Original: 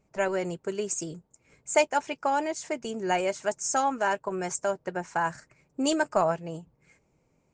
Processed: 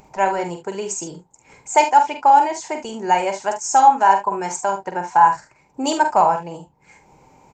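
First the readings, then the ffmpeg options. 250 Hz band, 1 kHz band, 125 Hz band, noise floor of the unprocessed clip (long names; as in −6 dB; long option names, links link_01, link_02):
+3.5 dB, +15.0 dB, can't be measured, −70 dBFS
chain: -filter_complex "[0:a]aresample=32000,aresample=44100,acompressor=mode=upward:threshold=-43dB:ratio=2.5,lowshelf=frequency=240:gain=-4.5,acontrast=70,superequalizer=9b=3.55:16b=0.251,asplit=2[link_01][link_02];[link_02]aecho=0:1:46|72:0.447|0.224[link_03];[link_01][link_03]amix=inputs=2:normalize=0,volume=-2dB"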